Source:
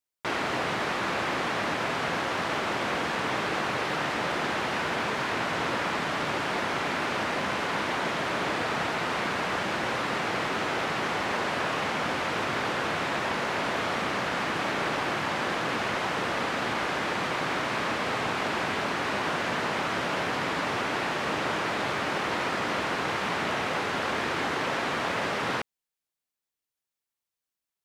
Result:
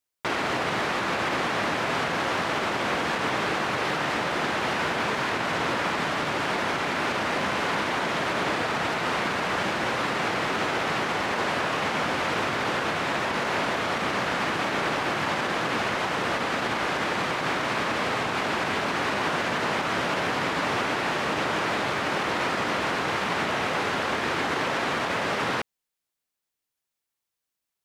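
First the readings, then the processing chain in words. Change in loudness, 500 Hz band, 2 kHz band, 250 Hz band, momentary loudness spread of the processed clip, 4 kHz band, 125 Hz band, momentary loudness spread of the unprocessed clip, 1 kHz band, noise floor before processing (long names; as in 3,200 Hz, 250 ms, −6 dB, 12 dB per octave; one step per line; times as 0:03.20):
+2.5 dB, +2.5 dB, +2.5 dB, +2.5 dB, 1 LU, +2.5 dB, +2.5 dB, 0 LU, +2.5 dB, below −85 dBFS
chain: brickwall limiter −20.5 dBFS, peak gain reduction 4.5 dB
level +3.5 dB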